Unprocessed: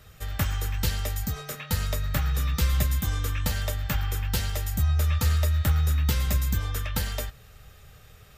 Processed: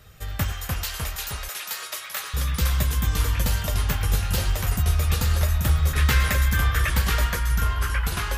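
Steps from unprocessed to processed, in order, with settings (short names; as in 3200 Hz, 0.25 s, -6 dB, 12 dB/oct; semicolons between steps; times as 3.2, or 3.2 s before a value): 0.52–2.34 HPF 1000 Hz 12 dB/oct; 5.93–6.9 bell 1700 Hz +14 dB 1.5 oct; echoes that change speed 0.25 s, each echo -2 st, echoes 3; gain +1 dB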